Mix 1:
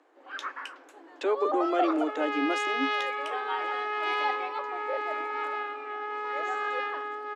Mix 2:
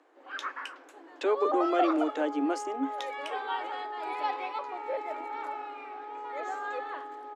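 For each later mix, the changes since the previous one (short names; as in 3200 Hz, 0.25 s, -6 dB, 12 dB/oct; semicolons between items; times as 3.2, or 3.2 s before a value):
second sound: add ladder low-pass 980 Hz, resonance 60%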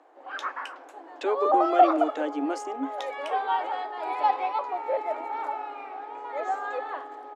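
first sound: add bell 750 Hz +10.5 dB 1.1 oct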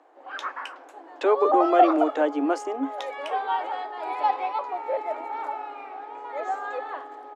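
speech: add bell 810 Hz +9 dB 2.5 oct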